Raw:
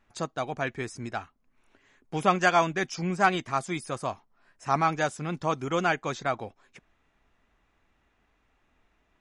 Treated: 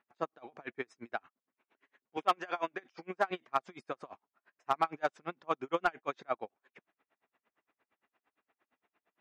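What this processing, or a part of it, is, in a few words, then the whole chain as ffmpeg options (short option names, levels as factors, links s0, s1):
helicopter radio: -filter_complex "[0:a]highpass=310,lowpass=2800,aeval=exprs='val(0)*pow(10,-35*(0.5-0.5*cos(2*PI*8.7*n/s))/20)':c=same,asoftclip=type=hard:threshold=0.126,asettb=1/sr,asplit=3[s0][s1][s2];[s0]atrim=end=2.174[s3];[s1]atrim=start=2.17:end=3.31,asetpts=PTS-STARTPTS,afade=t=in:d=0.004:c=qsin,afade=t=out:st=1.136:d=0.004:c=qsin,highpass=240[s4];[s2]atrim=start=3.306[s5];[s3][s4]acrossfade=d=0.004:c1=hsin:c2=qsin[s6];[s6][s5]acrossfade=d=0.004:c1=qsin:c2=hsin"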